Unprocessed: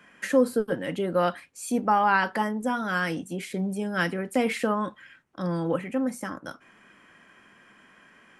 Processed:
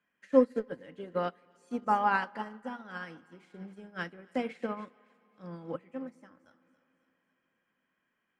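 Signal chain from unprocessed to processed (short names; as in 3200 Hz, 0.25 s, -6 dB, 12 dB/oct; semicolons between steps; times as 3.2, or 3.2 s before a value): LPF 6000 Hz 12 dB/oct; thinning echo 0.275 s, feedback 56%, high-pass 1100 Hz, level -13.5 dB; on a send at -11.5 dB: reverb RT60 3.9 s, pre-delay 7 ms; on the sum: upward expander 2.5:1, over -33 dBFS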